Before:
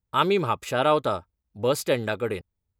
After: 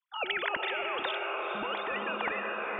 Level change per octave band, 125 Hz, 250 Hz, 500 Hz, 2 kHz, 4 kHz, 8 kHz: -24.0 dB, -13.5 dB, -12.0 dB, +1.5 dB, -3.0 dB, under -40 dB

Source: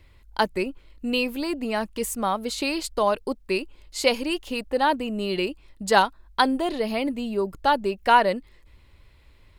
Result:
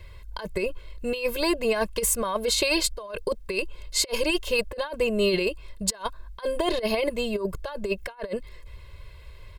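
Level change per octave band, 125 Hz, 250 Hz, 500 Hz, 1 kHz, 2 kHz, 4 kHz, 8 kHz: +0.5, -3.5, -0.5, -12.0, -3.0, +0.5, +7.5 dB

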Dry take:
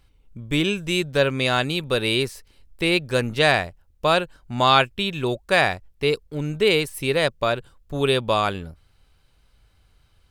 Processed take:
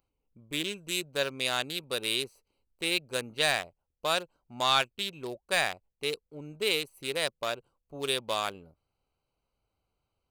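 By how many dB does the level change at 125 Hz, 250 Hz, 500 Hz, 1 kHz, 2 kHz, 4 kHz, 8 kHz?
-18.5, -15.0, -12.0, -10.5, -8.5, -5.5, 0.0 dB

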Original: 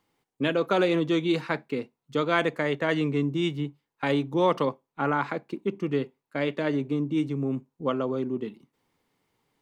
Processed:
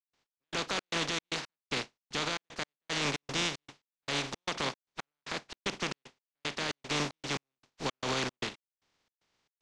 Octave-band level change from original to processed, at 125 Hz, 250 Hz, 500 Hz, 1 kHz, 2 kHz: -11.0, -14.5, -13.5, -7.5, -3.5 dB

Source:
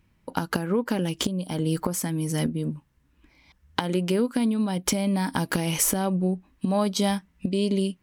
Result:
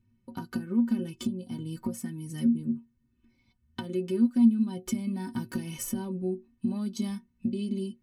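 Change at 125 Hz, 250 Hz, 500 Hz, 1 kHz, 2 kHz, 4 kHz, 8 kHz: -9.0, -1.5, -9.5, -15.5, -14.0, -14.0, -13.0 dB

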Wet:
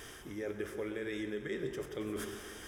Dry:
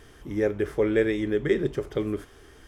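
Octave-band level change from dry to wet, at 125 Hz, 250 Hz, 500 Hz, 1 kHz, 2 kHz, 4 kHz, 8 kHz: -14.5 dB, -12.5 dB, -14.0 dB, -8.0 dB, -9.5 dB, -5.0 dB, n/a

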